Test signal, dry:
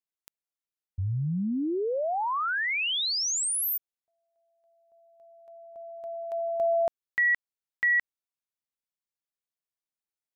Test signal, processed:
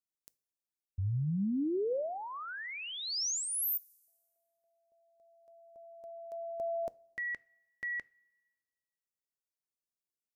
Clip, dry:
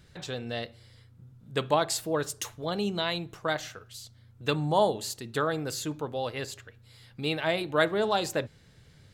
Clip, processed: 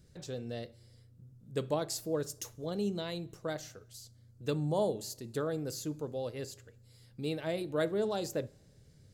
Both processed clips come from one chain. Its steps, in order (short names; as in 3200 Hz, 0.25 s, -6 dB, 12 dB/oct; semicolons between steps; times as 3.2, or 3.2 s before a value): band shelf 1700 Hz -10 dB 2.7 oct; two-slope reverb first 0.3 s, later 1.5 s, from -17 dB, DRR 18 dB; dynamic EQ 8400 Hz, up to -6 dB, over -50 dBFS, Q 2.4; gain -3.5 dB